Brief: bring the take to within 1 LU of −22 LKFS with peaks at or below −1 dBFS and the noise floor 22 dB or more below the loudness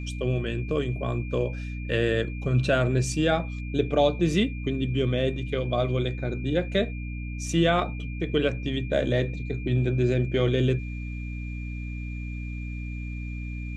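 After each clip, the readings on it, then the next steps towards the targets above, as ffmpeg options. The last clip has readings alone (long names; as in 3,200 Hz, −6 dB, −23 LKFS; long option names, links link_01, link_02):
mains hum 60 Hz; hum harmonics up to 300 Hz; level of the hum −31 dBFS; interfering tone 2,400 Hz; level of the tone −43 dBFS; integrated loudness −27.0 LKFS; sample peak −9.5 dBFS; target loudness −22.0 LKFS
→ -af "bandreject=frequency=60:width_type=h:width=6,bandreject=frequency=120:width_type=h:width=6,bandreject=frequency=180:width_type=h:width=6,bandreject=frequency=240:width_type=h:width=6,bandreject=frequency=300:width_type=h:width=6"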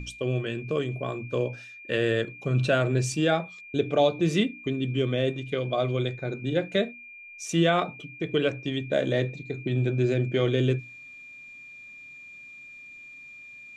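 mains hum none found; interfering tone 2,400 Hz; level of the tone −43 dBFS
→ -af "bandreject=frequency=2400:width=30"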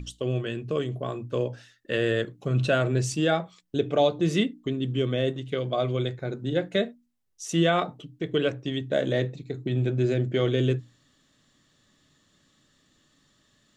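interfering tone none found; integrated loudness −27.0 LKFS; sample peak −10.5 dBFS; target loudness −22.0 LKFS
→ -af "volume=5dB"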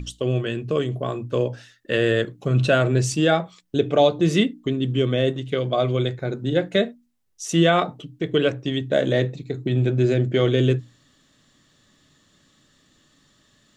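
integrated loudness −22.0 LKFS; sample peak −5.5 dBFS; background noise floor −61 dBFS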